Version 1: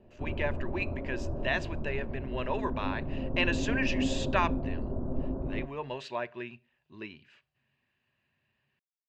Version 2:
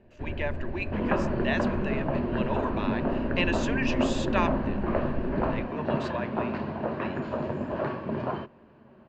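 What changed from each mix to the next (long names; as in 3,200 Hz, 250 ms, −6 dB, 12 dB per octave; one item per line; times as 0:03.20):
first sound: remove elliptic low-pass filter 1,300 Hz
second sound: unmuted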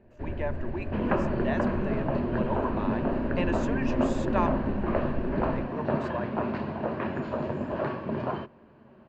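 speech: remove meter weighting curve D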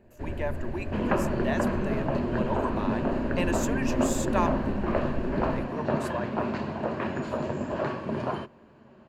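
master: remove high-frequency loss of the air 190 metres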